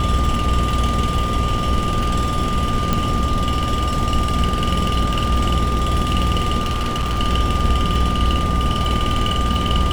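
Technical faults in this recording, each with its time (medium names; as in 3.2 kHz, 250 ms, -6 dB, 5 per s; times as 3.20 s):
buzz 60 Hz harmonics 13 -23 dBFS
crackle 52 per s -25 dBFS
whine 1.2 kHz -23 dBFS
2.93 s: pop
6.61–7.19 s: clipped -17 dBFS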